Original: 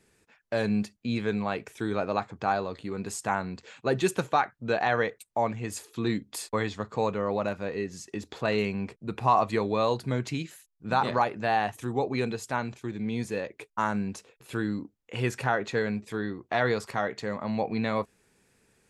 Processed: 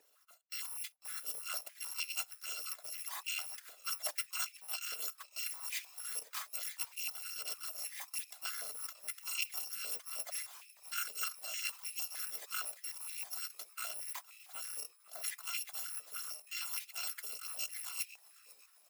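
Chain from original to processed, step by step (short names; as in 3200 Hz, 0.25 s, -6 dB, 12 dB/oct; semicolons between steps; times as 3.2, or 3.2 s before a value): FFT order left unsorted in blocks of 256 samples; reverse; compressor 5:1, threshold -35 dBFS, peak gain reduction 16 dB; reverse; harmonic-percussive split harmonic -10 dB; in parallel at -11 dB: bit-crush 5-bit; on the sum: frequency-shifting echo 0.499 s, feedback 58%, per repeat -110 Hz, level -20 dB; stepped high-pass 6.5 Hz 490–2400 Hz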